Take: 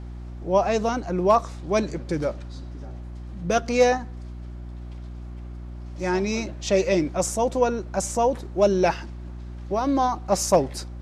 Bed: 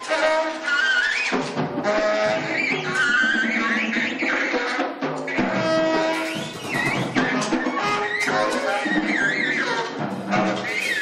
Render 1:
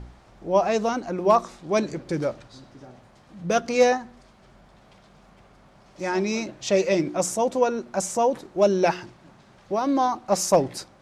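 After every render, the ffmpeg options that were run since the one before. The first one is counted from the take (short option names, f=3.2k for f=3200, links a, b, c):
-af "bandreject=f=60:t=h:w=4,bandreject=f=120:t=h:w=4,bandreject=f=180:t=h:w=4,bandreject=f=240:t=h:w=4,bandreject=f=300:t=h:w=4,bandreject=f=360:t=h:w=4"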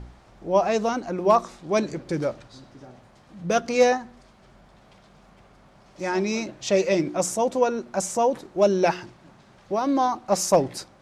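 -af anull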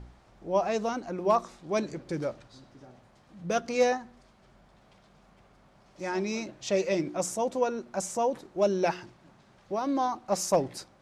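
-af "volume=-6dB"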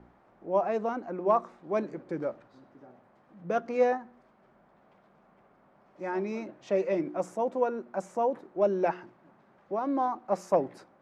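-filter_complex "[0:a]acrossover=split=170 2100:gain=0.141 1 0.112[a][b][c];[a][b][c]amix=inputs=3:normalize=0"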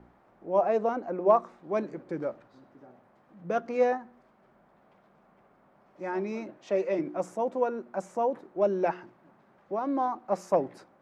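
-filter_complex "[0:a]asettb=1/sr,asplit=3[a][b][c];[a]atrim=end=0.584[d];[b]atrim=start=0.58:end=1.36,asetpts=PTS-STARTPTS,afade=t=in:d=0.004:c=qsin,afade=t=out:st=0.776:d=0.004:c=qsin,equalizer=f=550:w=1.5:g=5.5[e];[c]atrim=start=1.356[f];[d][e]acrossfade=d=0.004:c1=hsin:c2=qsin[g];[g][f]acrossfade=d=0.004:c1=qsin:c2=hsin,asettb=1/sr,asplit=3[h][i][j];[h]atrim=end=6.584[k];[i]atrim=start=6.58:end=6.99,asetpts=PTS-STARTPTS,afade=t=in:d=0.004:c=qsin,afade=t=out:st=0.406:d=0.004:c=qsin,highpass=200[l];[j]atrim=start=6.986[m];[k][l]acrossfade=d=0.004:c1=hsin:c2=qsin[n];[n][m]acrossfade=d=0.004:c1=qsin:c2=hsin"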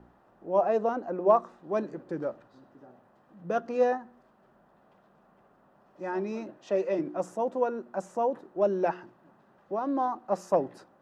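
-af "bandreject=f=2.2k:w=6"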